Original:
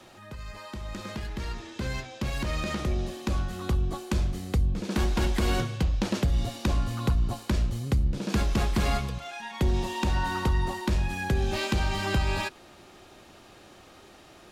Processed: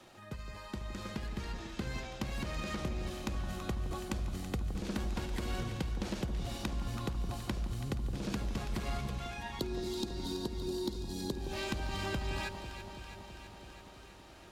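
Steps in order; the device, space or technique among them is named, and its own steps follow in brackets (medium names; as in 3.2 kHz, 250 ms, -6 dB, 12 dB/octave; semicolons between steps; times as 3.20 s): 9.59–11.32 s: FFT filter 120 Hz 0 dB, 390 Hz +13 dB, 600 Hz -5 dB, 2.3 kHz -21 dB, 4 kHz +12 dB, 6.2 kHz +6 dB; drum-bus smash (transient shaper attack +8 dB, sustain +4 dB; compression, threshold -26 dBFS, peak gain reduction 17.5 dB; saturation -18 dBFS, distortion -20 dB); echo whose repeats swap between lows and highs 165 ms, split 1.1 kHz, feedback 85%, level -9 dB; trim -6.5 dB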